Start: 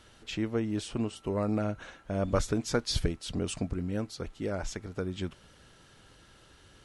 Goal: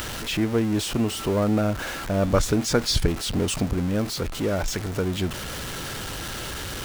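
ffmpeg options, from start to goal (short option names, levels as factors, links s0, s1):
-af "aeval=exprs='val(0)+0.5*0.02*sgn(val(0))':c=same,acompressor=mode=upward:threshold=0.0112:ratio=2.5,volume=2"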